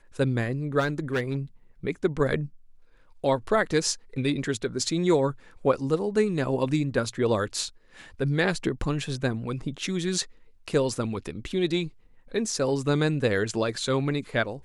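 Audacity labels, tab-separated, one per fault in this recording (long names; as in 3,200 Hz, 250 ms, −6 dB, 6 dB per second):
0.790000	1.370000	clipping −21.5 dBFS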